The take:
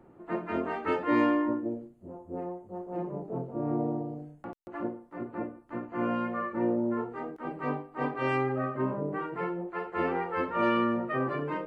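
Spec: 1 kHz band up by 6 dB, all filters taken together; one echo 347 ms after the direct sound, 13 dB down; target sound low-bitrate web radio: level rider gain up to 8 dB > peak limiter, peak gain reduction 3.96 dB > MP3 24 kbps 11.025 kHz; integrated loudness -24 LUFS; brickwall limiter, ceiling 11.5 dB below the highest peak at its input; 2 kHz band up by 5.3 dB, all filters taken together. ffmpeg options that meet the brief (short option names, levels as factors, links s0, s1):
-af "equalizer=f=1000:t=o:g=6,equalizer=f=2000:t=o:g=4.5,alimiter=limit=0.0841:level=0:latency=1,aecho=1:1:347:0.224,dynaudnorm=m=2.51,alimiter=limit=0.0631:level=0:latency=1,volume=3.35" -ar 11025 -c:a libmp3lame -b:a 24k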